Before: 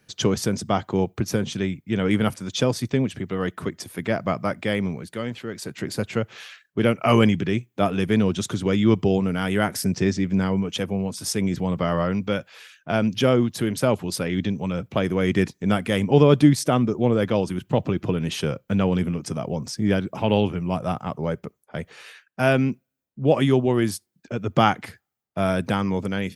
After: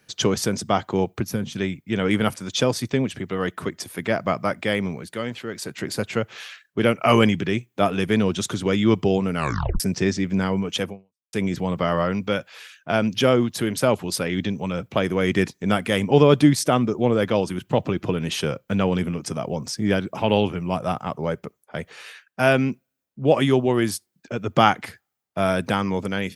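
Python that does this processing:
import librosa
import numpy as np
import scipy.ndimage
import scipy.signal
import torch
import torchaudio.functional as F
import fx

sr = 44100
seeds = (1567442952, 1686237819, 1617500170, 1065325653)

y = fx.spec_box(x, sr, start_s=1.22, length_s=0.34, low_hz=290.0, high_hz=9900.0, gain_db=-7)
y = fx.edit(y, sr, fx.tape_stop(start_s=9.35, length_s=0.45),
    fx.fade_out_span(start_s=10.89, length_s=0.44, curve='exp'), tone=tone)
y = fx.low_shelf(y, sr, hz=320.0, db=-5.5)
y = y * 10.0 ** (3.0 / 20.0)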